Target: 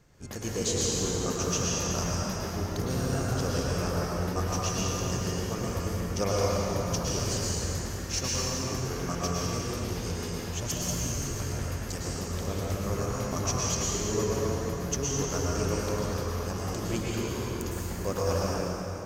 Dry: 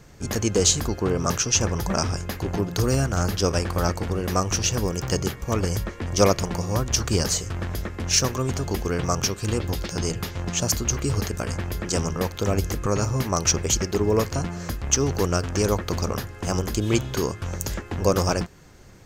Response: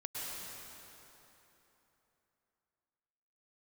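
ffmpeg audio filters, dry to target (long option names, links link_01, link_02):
-filter_complex "[0:a]asettb=1/sr,asplit=3[link_01][link_02][link_03];[link_01]atrim=end=10.944[link_04];[link_02]atrim=start=10.94:end=12.47,asetpts=PTS-STARTPTS,afade=type=in:duration=0.004:curve=qsin,afade=type=out:start_time=1.526:duration=0.004:curve=qsin,acrossover=split=120|3000[link_05][link_06][link_07];[link_06]acompressor=threshold=-25dB:ratio=6[link_08];[link_05][link_08][link_07]amix=inputs=3:normalize=0[link_09];[link_03]atrim=start=12.466[link_10];[link_04][link_09]acrossfade=duration=0.004:curve1=hsin:curve2=qsin[link_11];[link_11][link_10]acrossfade=duration=0.004:curve1=qsin:curve2=hsin[link_12];[1:a]atrim=start_sample=2205[link_13];[link_12][link_13]afir=irnorm=-1:irlink=0,volume=-7.5dB"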